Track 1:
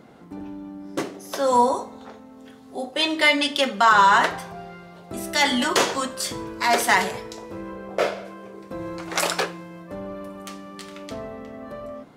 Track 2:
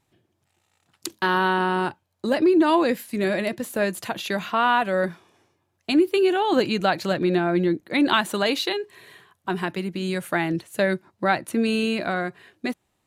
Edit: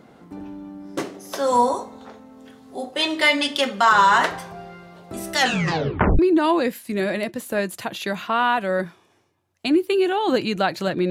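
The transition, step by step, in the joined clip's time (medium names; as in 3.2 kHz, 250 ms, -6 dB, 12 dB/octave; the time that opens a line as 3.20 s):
track 1
5.37 s: tape stop 0.82 s
6.19 s: go over to track 2 from 2.43 s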